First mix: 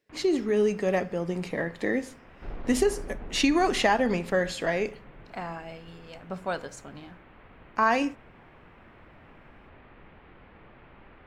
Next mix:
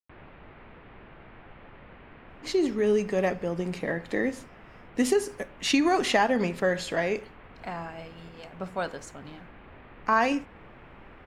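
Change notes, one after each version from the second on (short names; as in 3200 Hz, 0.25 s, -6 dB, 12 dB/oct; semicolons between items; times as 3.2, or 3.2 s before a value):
speech: entry +2.30 s; first sound +3.0 dB; second sound: muted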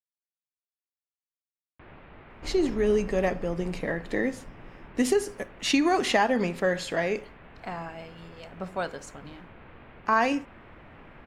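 first sound: entry +1.70 s; second sound: unmuted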